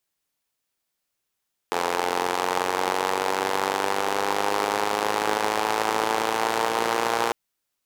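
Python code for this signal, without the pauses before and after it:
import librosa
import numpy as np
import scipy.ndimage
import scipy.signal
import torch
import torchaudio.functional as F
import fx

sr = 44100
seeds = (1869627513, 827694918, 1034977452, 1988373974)

y = fx.engine_four_rev(sr, seeds[0], length_s=5.6, rpm=2600, resonances_hz=(470.0, 810.0), end_rpm=3500)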